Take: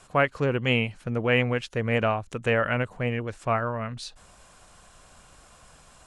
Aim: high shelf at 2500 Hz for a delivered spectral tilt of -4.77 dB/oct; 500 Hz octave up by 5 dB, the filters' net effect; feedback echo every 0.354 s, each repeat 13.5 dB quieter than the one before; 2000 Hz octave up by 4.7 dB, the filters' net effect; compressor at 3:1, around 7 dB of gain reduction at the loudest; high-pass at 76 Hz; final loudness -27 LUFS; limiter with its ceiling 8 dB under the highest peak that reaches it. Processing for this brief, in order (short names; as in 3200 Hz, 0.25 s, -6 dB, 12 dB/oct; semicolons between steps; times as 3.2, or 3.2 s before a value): HPF 76 Hz; bell 500 Hz +5.5 dB; bell 2000 Hz +7 dB; high shelf 2500 Hz -3 dB; compressor 3:1, threshold -23 dBFS; limiter -19 dBFS; feedback echo 0.354 s, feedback 21%, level -13.5 dB; gain +4 dB